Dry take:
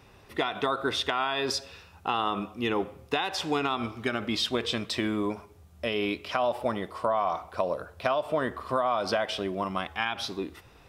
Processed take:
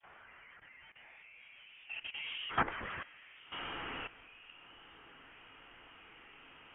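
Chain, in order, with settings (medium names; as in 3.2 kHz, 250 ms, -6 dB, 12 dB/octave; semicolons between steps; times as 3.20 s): one-bit comparator; Doppler pass-by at 4.16 s, 15 m/s, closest 1.4 m; gain riding within 4 dB 2 s; LFO band-pass saw down 0.25 Hz 630–2300 Hz; hum notches 50/100/150/200/250/300 Hz; phase dispersion highs, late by 51 ms, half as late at 770 Hz; frequency inversion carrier 3.5 kHz; plain phase-vocoder stretch 0.62×; on a send: echo that smears into a reverb 1205 ms, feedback 61%, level -9.5 dB; on the sum: level held to a coarse grid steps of 15 dB; trim +17.5 dB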